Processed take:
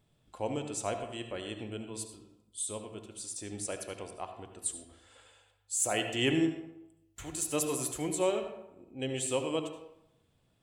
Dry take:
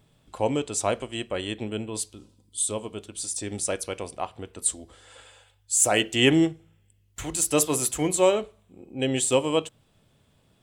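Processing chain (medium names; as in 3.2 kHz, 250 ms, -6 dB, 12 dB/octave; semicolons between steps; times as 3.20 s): feedback comb 350 Hz, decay 0.56 s, mix 50%; on a send: reverberation RT60 0.85 s, pre-delay 67 ms, DRR 7 dB; on the sum: trim -4 dB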